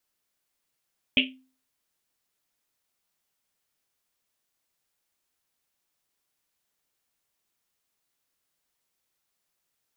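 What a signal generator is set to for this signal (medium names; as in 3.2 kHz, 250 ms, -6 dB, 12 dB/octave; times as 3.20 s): Risset drum, pitch 260 Hz, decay 0.41 s, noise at 2.8 kHz, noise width 960 Hz, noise 60%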